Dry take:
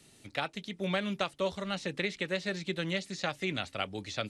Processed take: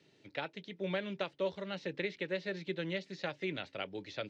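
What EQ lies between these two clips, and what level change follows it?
speaker cabinet 180–5600 Hz, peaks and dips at 230 Hz -10 dB, 740 Hz -7 dB, 1200 Hz -9 dB; high shelf 2500 Hz -11 dB; 0.0 dB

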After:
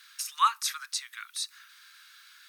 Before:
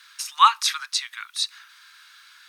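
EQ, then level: dynamic EQ 3200 Hz, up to -8 dB, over -36 dBFS, Q 0.81; HPF 1100 Hz 24 dB/oct; high shelf 11000 Hz +9.5 dB; -4.5 dB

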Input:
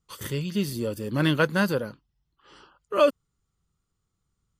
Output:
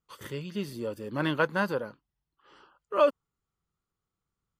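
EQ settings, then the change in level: dynamic EQ 920 Hz, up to +5 dB, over -41 dBFS, Q 2.6; low shelf 250 Hz -10.5 dB; high shelf 3400 Hz -12 dB; -1.5 dB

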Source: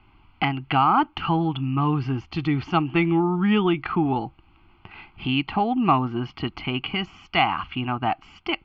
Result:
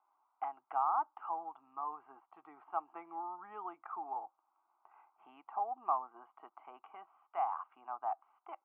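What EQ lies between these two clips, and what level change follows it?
ladder high-pass 540 Hz, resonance 40%; ladder low-pass 1300 Hz, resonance 45%; -4.0 dB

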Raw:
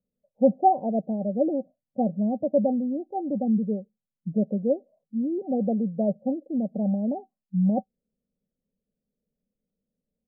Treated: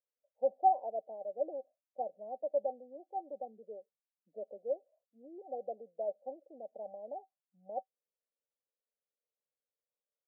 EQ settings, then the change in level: HPF 620 Hz 12 dB/oct; Butterworth band-pass 790 Hz, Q 0.71; -5.5 dB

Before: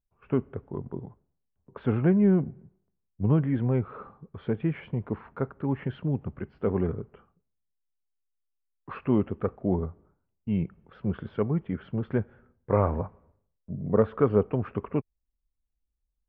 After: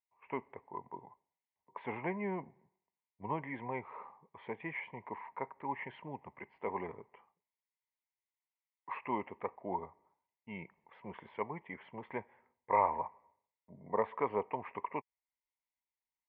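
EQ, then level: double band-pass 1400 Hz, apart 1.1 oct; +8.0 dB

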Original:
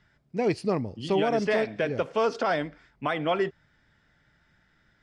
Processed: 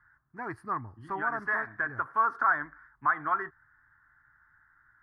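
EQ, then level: EQ curve 120 Hz 0 dB, 180 Hz -12 dB, 330 Hz -5 dB, 510 Hz -18 dB, 1100 Hz +14 dB, 1700 Hz +13 dB, 2600 Hz -23 dB, 7200 Hz -20 dB, 11000 Hz +2 dB; -6.5 dB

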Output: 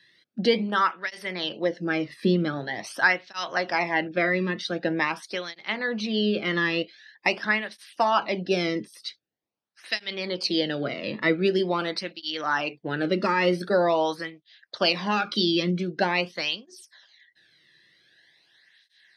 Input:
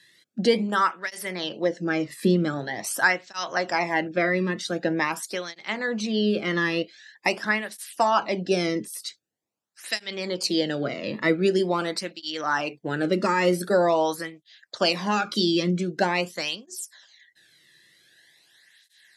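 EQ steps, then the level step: dynamic EQ 3200 Hz, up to +4 dB, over -40 dBFS, Q 0.83; polynomial smoothing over 15 samples; -1.5 dB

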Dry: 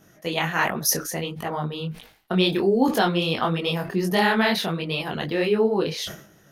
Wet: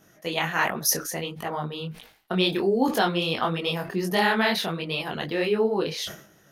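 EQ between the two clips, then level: low shelf 280 Hz -4.5 dB; -1.0 dB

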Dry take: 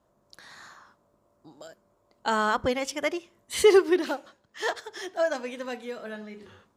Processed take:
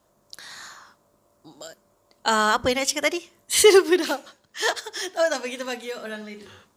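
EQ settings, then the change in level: high shelf 2800 Hz +10.5 dB; notches 60/120/180/240 Hz; +3.0 dB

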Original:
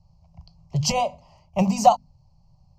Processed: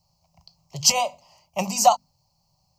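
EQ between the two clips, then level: RIAA curve recording; dynamic EQ 1400 Hz, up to +5 dB, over -34 dBFS, Q 1.5; -1.0 dB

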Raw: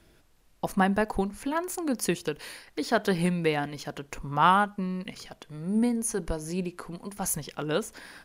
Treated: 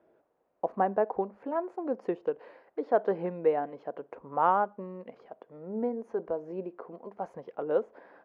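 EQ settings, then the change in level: ladder band-pass 670 Hz, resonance 35%; tilt -3 dB/oct; +8.5 dB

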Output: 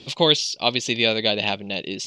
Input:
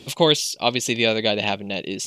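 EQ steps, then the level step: synth low-pass 4700 Hz, resonance Q 1.7; -2.0 dB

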